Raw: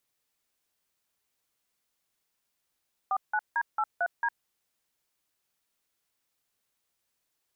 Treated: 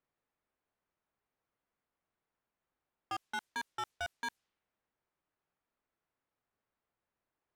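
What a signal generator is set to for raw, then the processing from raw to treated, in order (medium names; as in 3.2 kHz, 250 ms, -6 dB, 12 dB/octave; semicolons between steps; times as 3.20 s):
DTMF "49D83D", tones 57 ms, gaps 167 ms, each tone -27 dBFS
level-controlled noise filter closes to 1.5 kHz, open at -27.5 dBFS; hard clipper -34.5 dBFS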